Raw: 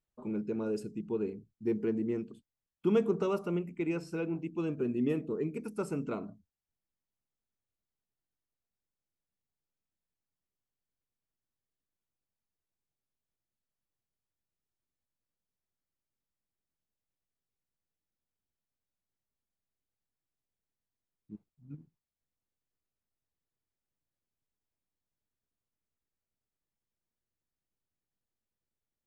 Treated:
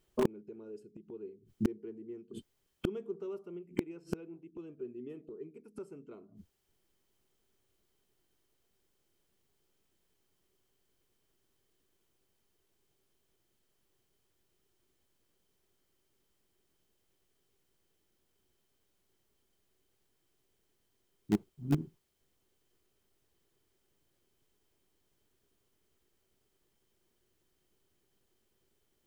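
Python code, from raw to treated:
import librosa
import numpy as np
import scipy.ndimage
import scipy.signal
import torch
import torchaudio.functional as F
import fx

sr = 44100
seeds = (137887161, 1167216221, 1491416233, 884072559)

p1 = fx.small_body(x, sr, hz=(380.0, 3100.0), ring_ms=40, db=12)
p2 = fx.gate_flip(p1, sr, shuts_db=-31.0, range_db=-33)
p3 = fx.quant_dither(p2, sr, seeds[0], bits=6, dither='none')
p4 = p2 + (p3 * librosa.db_to_amplitude(-11.5))
y = p4 * librosa.db_to_amplitude(14.0)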